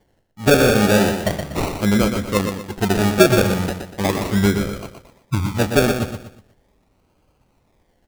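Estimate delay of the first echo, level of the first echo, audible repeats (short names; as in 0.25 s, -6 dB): 0.121 s, -7.0 dB, 4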